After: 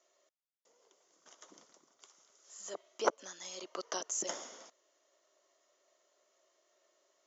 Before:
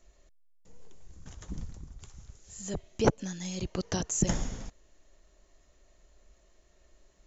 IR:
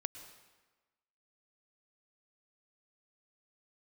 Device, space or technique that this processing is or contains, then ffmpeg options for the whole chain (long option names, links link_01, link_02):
phone speaker on a table: -filter_complex "[0:a]asettb=1/sr,asplit=3[link_01][link_02][link_03];[link_01]atrim=end=2.384[link_04];[link_02]atrim=start=2.38:end=3.98,asetpts=PTS-STARTPTS,afade=type=in:duration=0.004:curve=qsin,afade=type=out:start_time=1.596:duration=0.004:curve=qsin,equalizer=frequency=1200:width_type=o:width=0.87:gain=5.5[link_05];[link_03]atrim=start=3.976[link_06];[link_04][link_05]acrossfade=duration=0.004:curve1=hsin:curve2=qsin[link_07];[link_07][link_06]acrossfade=duration=0.004:curve1=qsin:curve2=hsin,highpass=frequency=440:width=0.5412,highpass=frequency=440:width=1.3066,equalizer=frequency=460:width_type=q:width=4:gain=-6,equalizer=frequency=810:width_type=q:width=4:gain=-7,equalizer=frequency=1700:width_type=q:width=4:gain=-7,equalizer=frequency=2500:width_type=q:width=4:gain=-8,equalizer=frequency=4100:width_type=q:width=4:gain=-6,lowpass=frequency=6400:width=0.5412,lowpass=frequency=6400:width=1.3066"